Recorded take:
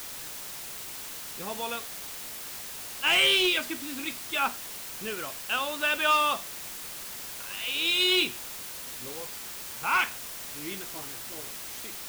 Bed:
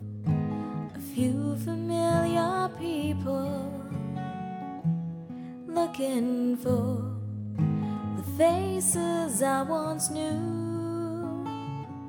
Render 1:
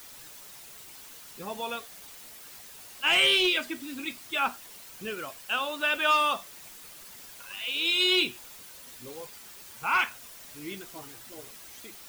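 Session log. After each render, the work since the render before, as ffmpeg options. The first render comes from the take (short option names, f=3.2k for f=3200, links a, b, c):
-af "afftdn=nr=9:nf=-40"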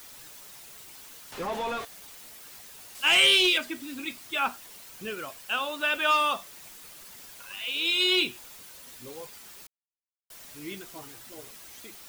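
-filter_complex "[0:a]asettb=1/sr,asplit=3[a][b][c];[a]atrim=end=1.324[d];[b]atrim=start=1.32:end=1.85,asetpts=PTS-STARTPTS,afade=t=in:d=0.004:c=qsin,afade=t=out:st=0.526:d=0.004:c=qsin,asplit=2[e][f];[f]highpass=f=720:p=1,volume=34dB,asoftclip=type=tanh:threshold=-22dB[g];[e][g]amix=inputs=2:normalize=0,lowpass=f=1.1k:p=1,volume=-6dB[h];[c]atrim=start=1.846[i];[d][h]acrossfade=d=0.004:c1=hsin:c2=qsin[j];[j][i]acrossfade=d=0.004:c1=qsin:c2=hsin,asettb=1/sr,asplit=3[k][l][m];[k]atrim=end=2.954[n];[l]atrim=start=2.95:end=3.58,asetpts=PTS-STARTPTS,afade=t=in:d=0.004:c=qsin,afade=t=out:st=0.626:d=0.004:c=qsin,equalizer=f=7.8k:t=o:w=2.3:g=6[o];[m]atrim=start=3.576[p];[n][o]acrossfade=d=0.004:c1=hsin:c2=qsin[q];[q][p]acrossfade=d=0.004:c1=qsin:c2=hsin,asplit=3[r][s][t];[r]atrim=end=9.67,asetpts=PTS-STARTPTS,afade=t=out:st=9.666:d=0.004:c=hsin[u];[s]atrim=start=9.67:end=10.3,asetpts=PTS-STARTPTS,volume=0[v];[t]atrim=start=10.3,asetpts=PTS-STARTPTS,afade=t=in:d=0.004:c=hsin[w];[u][v][w]concat=n=3:v=0:a=1"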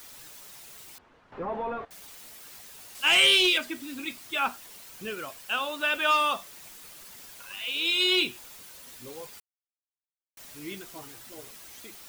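-filter_complex "[0:a]asettb=1/sr,asplit=3[a][b][c];[a]atrim=end=0.984[d];[b]atrim=start=0.98:end=1.91,asetpts=PTS-STARTPTS,afade=t=in:d=0.004:c=qsin,afade=t=out:st=0.926:d=0.004:c=qsin,lowpass=1.3k[e];[c]atrim=start=1.906[f];[d][e]acrossfade=d=0.004:c1=hsin:c2=qsin[g];[g][f]acrossfade=d=0.004:c1=qsin:c2=hsin,asplit=3[h][i][j];[h]atrim=end=9.4,asetpts=PTS-STARTPTS,afade=t=out:st=9.396:d=0.004:c=hsin[k];[i]atrim=start=9.4:end=10.37,asetpts=PTS-STARTPTS,volume=0[l];[j]atrim=start=10.37,asetpts=PTS-STARTPTS,afade=t=in:d=0.004:c=hsin[m];[k][l][m]concat=n=3:v=0:a=1"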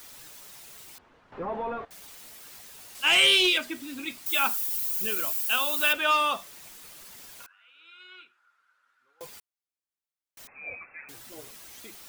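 -filter_complex "[0:a]asettb=1/sr,asplit=3[a][b][c];[a]atrim=end=4.264[d];[b]atrim=start=4.26:end=5.93,asetpts=PTS-STARTPTS,afade=t=in:d=0.004:c=qsin,afade=t=out:st=1.666:d=0.004:c=qsin,aemphasis=mode=production:type=75fm[e];[c]atrim=start=5.926[f];[d][e]acrossfade=d=0.004:c1=hsin:c2=qsin[g];[g][f]acrossfade=d=0.004:c1=qsin:c2=hsin,asettb=1/sr,asplit=3[h][i][j];[h]atrim=end=7.464[k];[i]atrim=start=7.46:end=9.21,asetpts=PTS-STARTPTS,afade=t=in:d=0.004:c=qsin,afade=t=out:st=1.746:d=0.004:c=qsin,bandpass=f=1.4k:t=q:w=14[l];[j]atrim=start=9.206[m];[k][l]acrossfade=d=0.004:c1=hsin:c2=qsin[n];[n][m]acrossfade=d=0.004:c1=qsin:c2=hsin,asettb=1/sr,asplit=3[o][p][q];[o]atrim=end=10.474[r];[p]atrim=start=10.47:end=11.09,asetpts=PTS-STARTPTS,afade=t=in:d=0.004:c=qsin,afade=t=out:st=0.616:d=0.004:c=qsin,lowpass=f=2.3k:t=q:w=0.5098,lowpass=f=2.3k:t=q:w=0.6013,lowpass=f=2.3k:t=q:w=0.9,lowpass=f=2.3k:t=q:w=2.563,afreqshift=-2700[s];[q]atrim=start=11.086[t];[r][s]acrossfade=d=0.004:c1=hsin:c2=qsin[u];[u][t]acrossfade=d=0.004:c1=qsin:c2=hsin"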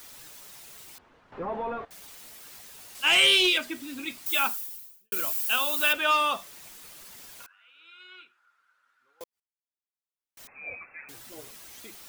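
-filter_complex "[0:a]asplit=3[a][b][c];[a]atrim=end=5.12,asetpts=PTS-STARTPTS,afade=t=out:st=4.4:d=0.72:c=qua[d];[b]atrim=start=5.12:end=9.24,asetpts=PTS-STARTPTS,afade=t=in:d=0.004:c=hsin,afade=t=out:st=4.116:d=0.004:c=hsin[e];[c]atrim=start=9.24,asetpts=PTS-STARTPTS,afade=t=in:d=1.23:c=qua[f];[d][e][f]concat=n=3:v=0:a=1"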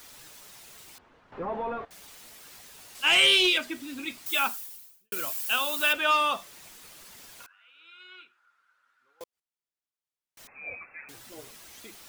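-af "highshelf=f=11k:g=-5"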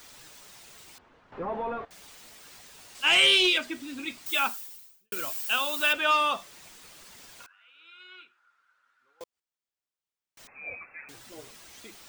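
-af "equalizer=f=12k:t=o:w=0.22:g=-15"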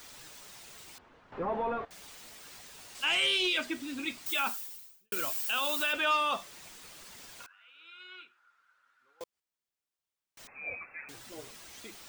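-af "alimiter=limit=-21dB:level=0:latency=1:release=11"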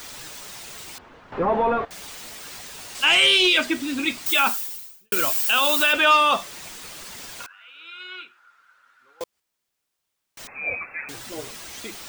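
-af "volume=11.5dB"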